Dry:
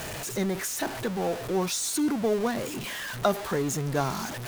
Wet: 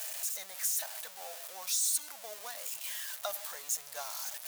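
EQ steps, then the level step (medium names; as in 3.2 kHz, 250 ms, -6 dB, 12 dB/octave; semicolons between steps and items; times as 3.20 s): differentiator; resonant low shelf 450 Hz -10 dB, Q 3; 0.0 dB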